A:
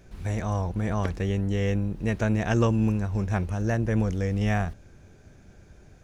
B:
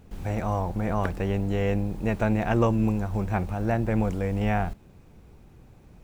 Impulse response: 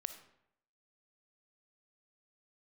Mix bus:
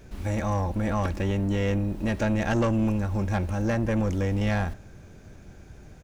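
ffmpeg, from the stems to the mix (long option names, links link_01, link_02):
-filter_complex "[0:a]asoftclip=type=tanh:threshold=-22.5dB,volume=1dB,asplit=2[link_01][link_02];[link_02]volume=-8dB[link_03];[1:a]acompressor=threshold=-25dB:ratio=6,adelay=3.6,volume=-2dB[link_04];[2:a]atrim=start_sample=2205[link_05];[link_03][link_05]afir=irnorm=-1:irlink=0[link_06];[link_01][link_04][link_06]amix=inputs=3:normalize=0"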